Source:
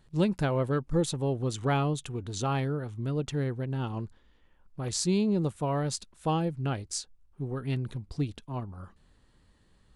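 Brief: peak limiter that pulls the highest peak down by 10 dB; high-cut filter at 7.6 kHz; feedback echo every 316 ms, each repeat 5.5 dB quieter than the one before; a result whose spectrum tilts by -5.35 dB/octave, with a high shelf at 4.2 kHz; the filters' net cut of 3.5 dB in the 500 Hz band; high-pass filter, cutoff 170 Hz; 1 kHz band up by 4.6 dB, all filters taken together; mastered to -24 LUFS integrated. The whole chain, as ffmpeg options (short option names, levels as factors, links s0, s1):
-af "highpass=170,lowpass=7600,equalizer=f=500:t=o:g=-6.5,equalizer=f=1000:t=o:g=8.5,highshelf=f=4200:g=-3,alimiter=limit=0.0668:level=0:latency=1,aecho=1:1:316|632|948|1264|1580|1896|2212:0.531|0.281|0.149|0.079|0.0419|0.0222|0.0118,volume=3.35"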